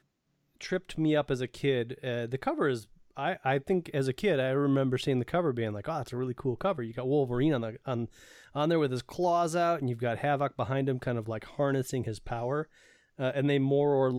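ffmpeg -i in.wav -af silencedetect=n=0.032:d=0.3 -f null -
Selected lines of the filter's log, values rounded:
silence_start: 0.00
silence_end: 0.64 | silence_duration: 0.64
silence_start: 2.77
silence_end: 3.19 | silence_duration: 0.42
silence_start: 8.04
silence_end: 8.56 | silence_duration: 0.52
silence_start: 12.62
silence_end: 13.20 | silence_duration: 0.58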